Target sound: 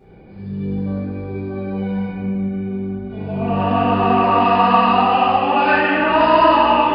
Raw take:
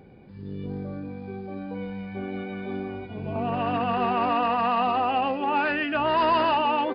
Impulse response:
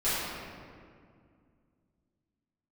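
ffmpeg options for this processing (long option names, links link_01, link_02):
-filter_complex "[0:a]asettb=1/sr,asplit=3[link_01][link_02][link_03];[link_01]atrim=end=2.054[link_04];[link_02]atrim=start=2.05:end=3.1,asetpts=PTS-STARTPTS,afade=type=in:duration=0.004:curve=qsin,afade=type=out:start_time=1.046:duration=0.004:curve=qsin,acrossover=split=270[link_05][link_06];[link_06]acompressor=threshold=-49dB:ratio=6[link_07];[link_05][link_07]amix=inputs=2:normalize=0[link_08];[link_03]atrim=start=3.096[link_09];[link_04][link_08]acrossfade=duration=0.004:curve1=hsin:curve2=qsin[link_10];[link_10][link_09]acrossfade=duration=0.004:curve1=qsin:curve2=hsin,asettb=1/sr,asplit=3[link_11][link_12][link_13];[link_11]atrim=end=4.394[link_14];[link_12]atrim=start=4.39:end=5.78,asetpts=PTS-STARTPTS,afade=type=in:duration=0.004:curve=qsin,afade=type=out:start_time=1.386:duration=0.004:curve=qsin,highshelf=frequency=4200:gain=10[link_15];[link_13]atrim=start=5.776[link_16];[link_14][link_15]acrossfade=duration=0.004:curve1=hsin:curve2=qsin[link_17];[link_17][link_16]acrossfade=duration=0.004:curve1=qsin:curve2=hsin[link_18];[1:a]atrim=start_sample=2205[link_19];[link_18][link_19]afir=irnorm=-1:irlink=0,volume=-3.5dB"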